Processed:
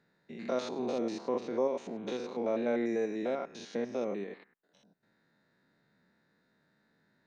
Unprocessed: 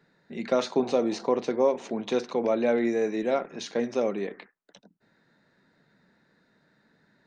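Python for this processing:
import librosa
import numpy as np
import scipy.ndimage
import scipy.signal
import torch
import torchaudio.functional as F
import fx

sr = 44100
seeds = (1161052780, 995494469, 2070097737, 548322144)

y = fx.spec_steps(x, sr, hold_ms=100)
y = F.gain(torch.from_numpy(y), -5.5).numpy()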